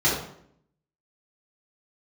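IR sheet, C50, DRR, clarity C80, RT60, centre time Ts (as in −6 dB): 2.0 dB, −8.5 dB, 7.0 dB, 0.65 s, 48 ms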